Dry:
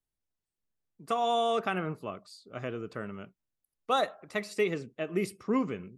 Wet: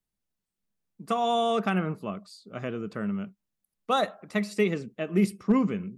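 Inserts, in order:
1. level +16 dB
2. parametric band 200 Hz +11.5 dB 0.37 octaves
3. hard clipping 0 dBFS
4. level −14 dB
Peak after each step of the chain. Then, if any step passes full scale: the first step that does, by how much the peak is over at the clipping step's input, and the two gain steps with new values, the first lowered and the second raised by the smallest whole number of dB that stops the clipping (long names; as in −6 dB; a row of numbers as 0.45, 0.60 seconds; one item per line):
+0.5, +3.0, 0.0, −14.0 dBFS
step 1, 3.0 dB
step 1 +13 dB, step 4 −11 dB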